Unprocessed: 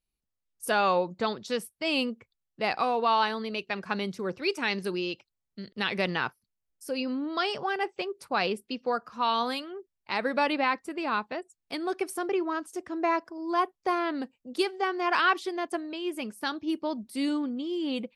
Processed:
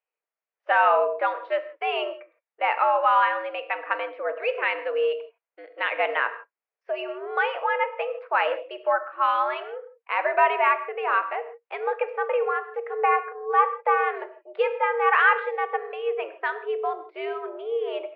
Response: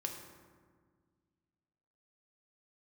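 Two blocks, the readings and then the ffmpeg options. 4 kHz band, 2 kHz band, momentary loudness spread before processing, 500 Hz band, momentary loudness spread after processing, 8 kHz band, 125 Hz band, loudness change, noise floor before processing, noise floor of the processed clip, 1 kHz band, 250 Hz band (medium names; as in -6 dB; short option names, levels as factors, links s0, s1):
-5.0 dB, +6.5 dB, 10 LU, +5.5 dB, 12 LU, under -30 dB, under -40 dB, +5.0 dB, -84 dBFS, under -85 dBFS, +6.5 dB, under -15 dB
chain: -filter_complex "[0:a]asplit=2[s0][s1];[1:a]atrim=start_sample=2205,afade=t=out:st=0.22:d=0.01,atrim=end_sample=10143,highshelf=f=5000:g=6.5[s2];[s1][s2]afir=irnorm=-1:irlink=0,volume=1.12[s3];[s0][s3]amix=inputs=2:normalize=0,highpass=f=370:t=q:w=0.5412,highpass=f=370:t=q:w=1.307,lowpass=f=2400:t=q:w=0.5176,lowpass=f=2400:t=q:w=0.7071,lowpass=f=2400:t=q:w=1.932,afreqshift=110"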